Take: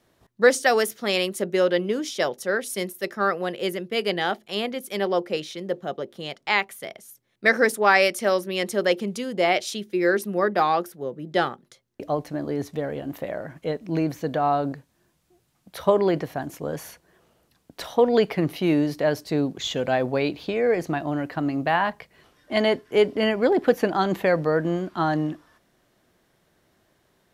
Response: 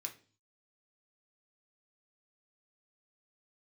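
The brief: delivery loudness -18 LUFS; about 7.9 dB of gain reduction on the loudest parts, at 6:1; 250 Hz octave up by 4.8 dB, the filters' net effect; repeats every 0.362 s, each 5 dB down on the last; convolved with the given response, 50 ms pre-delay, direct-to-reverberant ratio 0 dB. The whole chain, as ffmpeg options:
-filter_complex "[0:a]equalizer=f=250:t=o:g=6.5,acompressor=threshold=-19dB:ratio=6,aecho=1:1:362|724|1086|1448|1810|2172|2534:0.562|0.315|0.176|0.0988|0.0553|0.031|0.0173,asplit=2[a][b];[1:a]atrim=start_sample=2205,adelay=50[c];[b][c]afir=irnorm=-1:irlink=0,volume=2.5dB[d];[a][d]amix=inputs=2:normalize=0,volume=4.5dB"

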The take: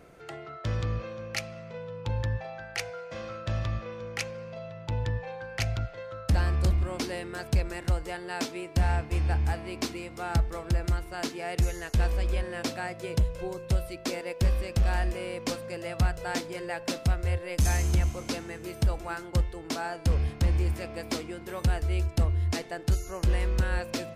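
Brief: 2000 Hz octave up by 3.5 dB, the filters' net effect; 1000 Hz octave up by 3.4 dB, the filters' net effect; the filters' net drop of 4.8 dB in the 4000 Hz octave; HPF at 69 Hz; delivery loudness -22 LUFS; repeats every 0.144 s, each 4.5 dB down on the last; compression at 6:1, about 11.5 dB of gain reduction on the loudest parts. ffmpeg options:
-af "highpass=69,equalizer=f=1k:t=o:g=4,equalizer=f=2k:t=o:g=5,equalizer=f=4k:t=o:g=-8.5,acompressor=threshold=-34dB:ratio=6,aecho=1:1:144|288|432|576|720|864|1008|1152|1296:0.596|0.357|0.214|0.129|0.0772|0.0463|0.0278|0.0167|0.01,volume=15dB"

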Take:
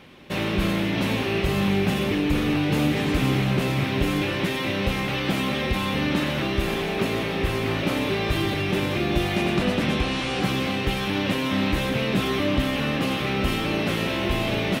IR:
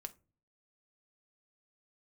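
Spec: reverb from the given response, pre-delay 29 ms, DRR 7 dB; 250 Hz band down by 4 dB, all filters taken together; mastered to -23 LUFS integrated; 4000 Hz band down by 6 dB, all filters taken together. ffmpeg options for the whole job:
-filter_complex "[0:a]equalizer=f=250:t=o:g=-5.5,equalizer=f=4k:t=o:g=-8.5,asplit=2[a][b];[1:a]atrim=start_sample=2205,adelay=29[c];[b][c]afir=irnorm=-1:irlink=0,volume=-3dB[d];[a][d]amix=inputs=2:normalize=0,volume=3.5dB"

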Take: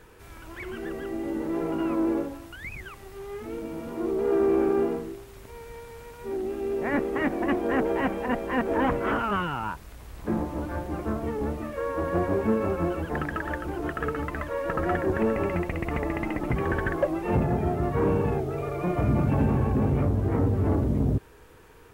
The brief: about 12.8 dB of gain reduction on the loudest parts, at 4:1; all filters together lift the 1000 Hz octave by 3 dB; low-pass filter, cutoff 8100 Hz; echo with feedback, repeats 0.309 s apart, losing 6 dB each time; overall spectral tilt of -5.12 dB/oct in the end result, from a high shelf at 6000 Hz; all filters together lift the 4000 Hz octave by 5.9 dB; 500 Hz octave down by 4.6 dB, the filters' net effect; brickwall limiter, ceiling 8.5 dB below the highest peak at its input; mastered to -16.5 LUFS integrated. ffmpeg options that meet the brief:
-af "lowpass=8.1k,equalizer=f=500:t=o:g=-7.5,equalizer=f=1k:t=o:g=5.5,equalizer=f=4k:t=o:g=6.5,highshelf=f=6k:g=7.5,acompressor=threshold=-36dB:ratio=4,alimiter=level_in=7dB:limit=-24dB:level=0:latency=1,volume=-7dB,aecho=1:1:309|618|927|1236|1545|1854:0.501|0.251|0.125|0.0626|0.0313|0.0157,volume=23dB"

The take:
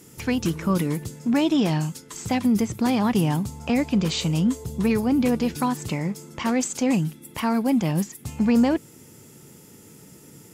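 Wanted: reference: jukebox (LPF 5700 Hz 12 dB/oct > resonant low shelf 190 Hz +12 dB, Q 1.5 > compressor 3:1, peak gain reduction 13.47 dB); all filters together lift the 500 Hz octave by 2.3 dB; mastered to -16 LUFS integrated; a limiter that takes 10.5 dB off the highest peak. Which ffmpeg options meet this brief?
-af "equalizer=f=500:t=o:g=4.5,alimiter=limit=-18.5dB:level=0:latency=1,lowpass=5.7k,lowshelf=f=190:t=q:w=1.5:g=12,acompressor=threshold=-31dB:ratio=3,volume=17dB"

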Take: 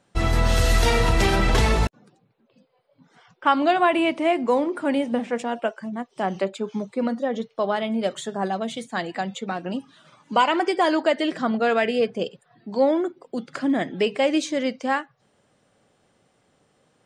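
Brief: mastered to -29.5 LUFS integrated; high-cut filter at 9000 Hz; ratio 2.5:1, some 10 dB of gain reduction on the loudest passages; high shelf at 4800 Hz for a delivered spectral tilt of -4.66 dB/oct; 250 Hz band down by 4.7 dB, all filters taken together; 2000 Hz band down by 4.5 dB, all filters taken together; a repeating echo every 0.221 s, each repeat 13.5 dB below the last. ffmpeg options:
-af "lowpass=9k,equalizer=f=250:t=o:g=-6,equalizer=f=2k:t=o:g=-4.5,highshelf=f=4.8k:g=-6.5,acompressor=threshold=-31dB:ratio=2.5,aecho=1:1:221|442:0.211|0.0444,volume=3.5dB"

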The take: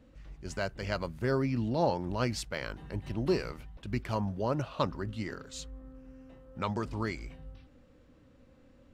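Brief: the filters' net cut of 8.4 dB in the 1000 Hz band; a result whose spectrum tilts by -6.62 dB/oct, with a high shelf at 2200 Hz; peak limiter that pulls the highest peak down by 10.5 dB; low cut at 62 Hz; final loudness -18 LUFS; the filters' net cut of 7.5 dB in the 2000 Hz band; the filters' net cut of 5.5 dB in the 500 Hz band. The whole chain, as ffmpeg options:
-af "highpass=62,equalizer=f=500:t=o:g=-5,equalizer=f=1k:t=o:g=-7,equalizer=f=2k:t=o:g=-4,highshelf=f=2.2k:g=-5.5,volume=24.5dB,alimiter=limit=-7dB:level=0:latency=1"

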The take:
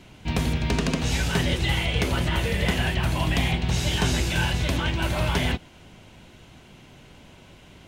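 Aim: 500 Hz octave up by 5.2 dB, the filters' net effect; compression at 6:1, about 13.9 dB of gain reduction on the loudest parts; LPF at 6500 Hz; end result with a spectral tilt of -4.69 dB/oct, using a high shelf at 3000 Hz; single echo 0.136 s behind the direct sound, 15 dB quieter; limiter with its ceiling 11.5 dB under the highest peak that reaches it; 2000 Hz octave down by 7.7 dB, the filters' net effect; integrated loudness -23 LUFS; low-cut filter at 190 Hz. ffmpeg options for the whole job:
-af "highpass=190,lowpass=6.5k,equalizer=f=500:t=o:g=7.5,equalizer=f=2k:t=o:g=-7,highshelf=f=3k:g=-9,acompressor=threshold=-36dB:ratio=6,alimiter=level_in=11dB:limit=-24dB:level=0:latency=1,volume=-11dB,aecho=1:1:136:0.178,volume=21.5dB"

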